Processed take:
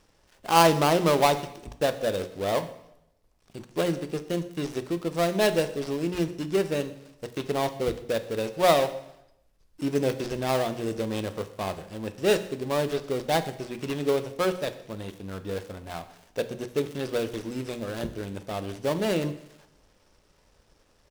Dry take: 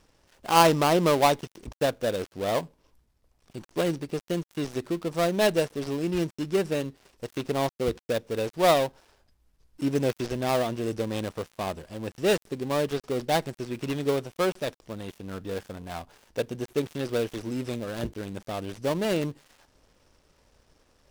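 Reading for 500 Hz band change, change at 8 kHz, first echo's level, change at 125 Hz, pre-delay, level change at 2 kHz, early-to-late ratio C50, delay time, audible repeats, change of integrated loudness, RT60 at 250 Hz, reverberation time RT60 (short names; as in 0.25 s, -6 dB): +0.5 dB, +0.5 dB, -23.0 dB, 0.0 dB, 4 ms, +0.5 dB, 13.5 dB, 0.123 s, 1, 0.0 dB, 0.85 s, 0.85 s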